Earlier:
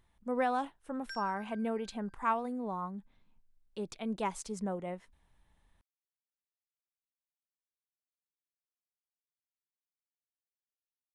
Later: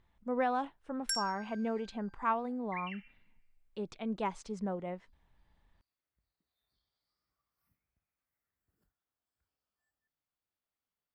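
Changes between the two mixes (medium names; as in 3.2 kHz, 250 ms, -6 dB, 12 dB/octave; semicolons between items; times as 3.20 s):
speech: add distance through air 110 m; first sound: remove distance through air 240 m; second sound: unmuted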